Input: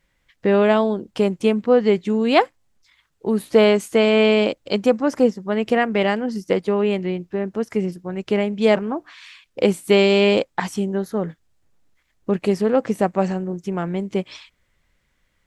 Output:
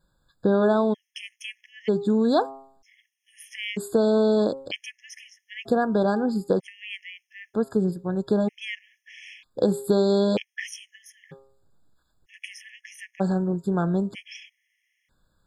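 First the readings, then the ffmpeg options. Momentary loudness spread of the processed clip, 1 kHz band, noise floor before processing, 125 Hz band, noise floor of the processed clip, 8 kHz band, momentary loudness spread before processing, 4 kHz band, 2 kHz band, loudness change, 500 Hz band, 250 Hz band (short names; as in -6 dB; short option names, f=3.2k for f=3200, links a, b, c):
21 LU, -6.5 dB, -68 dBFS, -3.0 dB, -76 dBFS, -4.0 dB, 11 LU, -9.0 dB, -9.5 dB, -4.5 dB, -7.0 dB, -4.5 dB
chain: -af "equalizer=f=140:t=o:w=0.86:g=4,bandreject=f=134.8:t=h:w=4,bandreject=f=269.6:t=h:w=4,bandreject=f=404.4:t=h:w=4,bandreject=f=539.2:t=h:w=4,bandreject=f=674:t=h:w=4,bandreject=f=808.8:t=h:w=4,bandreject=f=943.6:t=h:w=4,bandreject=f=1.0784k:t=h:w=4,bandreject=f=1.2132k:t=h:w=4,bandreject=f=1.348k:t=h:w=4,acompressor=threshold=-17dB:ratio=4,afftfilt=real='re*gt(sin(2*PI*0.53*pts/sr)*(1-2*mod(floor(b*sr/1024/1700),2)),0)':imag='im*gt(sin(2*PI*0.53*pts/sr)*(1-2*mod(floor(b*sr/1024/1700),2)),0)':win_size=1024:overlap=0.75"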